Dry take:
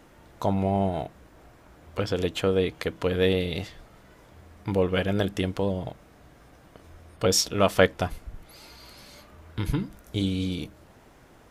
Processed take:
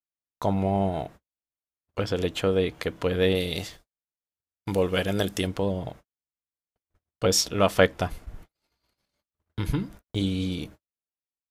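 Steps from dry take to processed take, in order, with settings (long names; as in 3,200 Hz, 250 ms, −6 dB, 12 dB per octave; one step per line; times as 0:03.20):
0:03.35–0:05.47: bass and treble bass −2 dB, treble +10 dB
noise gate −43 dBFS, range −56 dB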